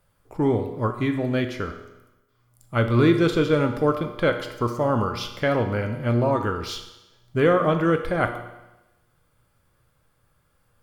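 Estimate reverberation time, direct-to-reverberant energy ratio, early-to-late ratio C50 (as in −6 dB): 1.0 s, 5.5 dB, 8.5 dB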